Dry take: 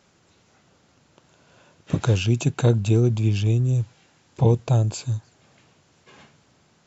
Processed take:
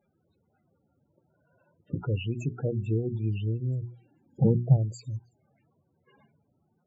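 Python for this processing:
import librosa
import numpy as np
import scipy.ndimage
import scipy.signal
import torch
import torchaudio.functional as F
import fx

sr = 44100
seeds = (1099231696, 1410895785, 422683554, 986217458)

y = fx.hum_notches(x, sr, base_hz=60, count=7)
y = fx.spec_topn(y, sr, count=16)
y = fx.peak_eq(y, sr, hz=fx.line((3.81, 450.0), (4.76, 140.0)), db=13.0, octaves=1.1, at=(3.81, 4.76), fade=0.02)
y = F.gain(torch.from_numpy(y), -8.0).numpy()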